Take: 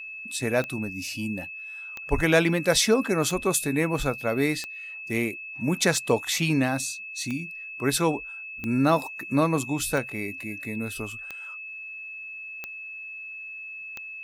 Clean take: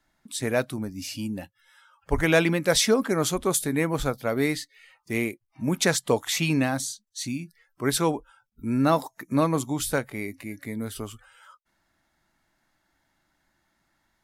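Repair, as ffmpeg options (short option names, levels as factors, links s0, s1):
-af "adeclick=t=4,bandreject=f=2600:w=30"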